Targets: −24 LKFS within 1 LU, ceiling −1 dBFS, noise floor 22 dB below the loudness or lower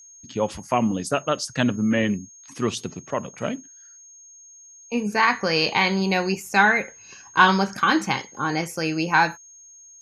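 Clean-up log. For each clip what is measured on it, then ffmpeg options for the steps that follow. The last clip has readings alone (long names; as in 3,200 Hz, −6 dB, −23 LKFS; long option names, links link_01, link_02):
interfering tone 6,500 Hz; level of the tone −45 dBFS; integrated loudness −22.5 LKFS; sample peak −2.0 dBFS; target loudness −24.0 LKFS
→ -af "bandreject=frequency=6500:width=30"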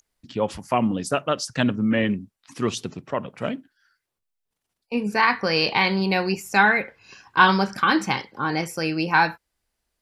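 interfering tone none found; integrated loudness −22.5 LKFS; sample peak −2.0 dBFS; target loudness −24.0 LKFS
→ -af "volume=-1.5dB"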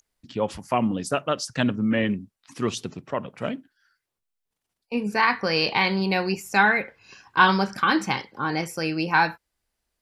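integrated loudness −24.0 LKFS; sample peak −3.5 dBFS; background noise floor −83 dBFS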